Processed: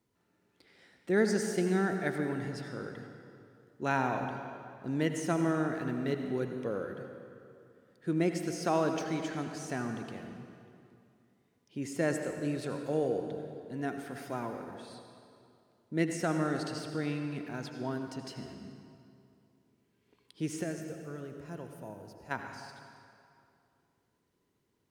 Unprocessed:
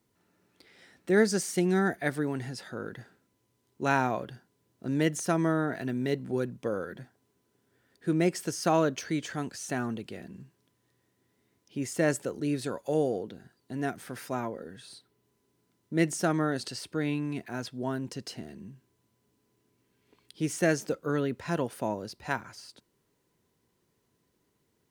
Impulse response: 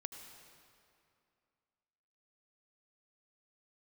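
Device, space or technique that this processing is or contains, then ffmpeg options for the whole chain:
swimming-pool hall: -filter_complex "[0:a]asplit=3[a][b][c];[a]afade=t=out:st=20.62:d=0.02[d];[b]equalizer=f=125:t=o:w=1:g=-5,equalizer=f=250:t=o:w=1:g=-10,equalizer=f=500:t=o:w=1:g=-6,equalizer=f=1k:t=o:w=1:g=-9,equalizer=f=2k:t=o:w=1:g=-9,equalizer=f=4k:t=o:w=1:g=-12,equalizer=f=8k:t=o:w=1:g=-4,afade=t=in:st=20.62:d=0.02,afade=t=out:st=22.3:d=0.02[e];[c]afade=t=in:st=22.3:d=0.02[f];[d][e][f]amix=inputs=3:normalize=0[g];[1:a]atrim=start_sample=2205[h];[g][h]afir=irnorm=-1:irlink=0,highshelf=f=5.8k:g=-5.5"

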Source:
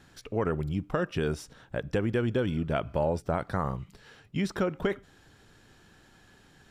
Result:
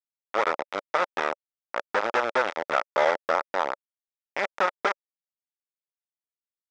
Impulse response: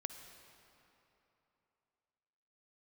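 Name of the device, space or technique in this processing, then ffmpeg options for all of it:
hand-held game console: -af "acrusher=bits=3:mix=0:aa=0.000001,highpass=490,equalizer=f=570:t=q:w=4:g=7,equalizer=f=880:t=q:w=4:g=5,equalizer=f=1.3k:t=q:w=4:g=8,equalizer=f=2k:t=q:w=4:g=4,equalizer=f=2.9k:t=q:w=4:g=-6,equalizer=f=4.3k:t=q:w=4:g=-9,lowpass=f=4.8k:w=0.5412,lowpass=f=4.8k:w=1.3066,volume=1dB"

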